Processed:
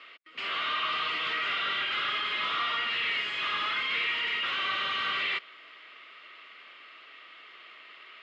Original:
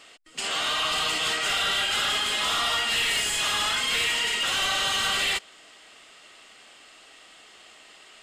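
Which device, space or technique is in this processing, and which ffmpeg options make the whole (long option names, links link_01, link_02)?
overdrive pedal into a guitar cabinet: -filter_complex "[0:a]asplit=2[link_01][link_02];[link_02]highpass=frequency=720:poles=1,volume=14dB,asoftclip=type=tanh:threshold=-17dB[link_03];[link_01][link_03]amix=inputs=2:normalize=0,lowpass=frequency=4800:poles=1,volume=-6dB,highpass=110,equalizer=frequency=360:width_type=q:width=4:gain=3,equalizer=frequency=780:width_type=q:width=4:gain=-9,equalizer=frequency=1200:width_type=q:width=4:gain=7,equalizer=frequency=2200:width_type=q:width=4:gain=7,lowpass=frequency=3800:width=0.5412,lowpass=frequency=3800:width=1.3066,volume=-9dB"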